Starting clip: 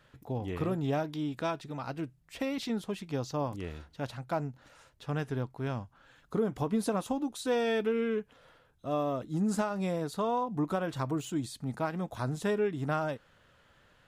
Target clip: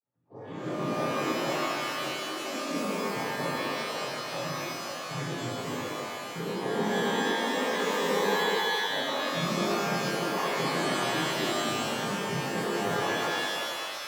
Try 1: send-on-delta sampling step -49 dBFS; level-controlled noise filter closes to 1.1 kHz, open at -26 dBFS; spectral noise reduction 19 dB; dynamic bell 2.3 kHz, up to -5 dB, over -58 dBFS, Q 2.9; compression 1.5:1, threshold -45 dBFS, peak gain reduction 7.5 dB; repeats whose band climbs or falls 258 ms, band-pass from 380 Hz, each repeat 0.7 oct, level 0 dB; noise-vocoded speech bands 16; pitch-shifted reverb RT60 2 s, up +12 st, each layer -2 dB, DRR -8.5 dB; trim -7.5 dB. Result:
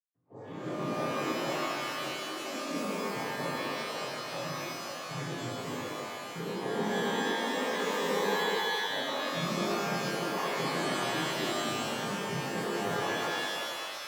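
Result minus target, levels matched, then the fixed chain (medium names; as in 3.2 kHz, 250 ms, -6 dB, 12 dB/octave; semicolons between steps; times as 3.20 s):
send-on-delta sampling: distortion +8 dB; compression: peak gain reduction +3 dB
send-on-delta sampling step -56 dBFS; level-controlled noise filter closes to 1.1 kHz, open at -26 dBFS; spectral noise reduction 19 dB; dynamic bell 2.3 kHz, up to -5 dB, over -58 dBFS, Q 2.9; compression 1.5:1, threshold -36 dBFS, peak gain reduction 4.5 dB; repeats whose band climbs or falls 258 ms, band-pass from 380 Hz, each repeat 0.7 oct, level 0 dB; noise-vocoded speech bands 16; pitch-shifted reverb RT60 2 s, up +12 st, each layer -2 dB, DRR -8.5 dB; trim -7.5 dB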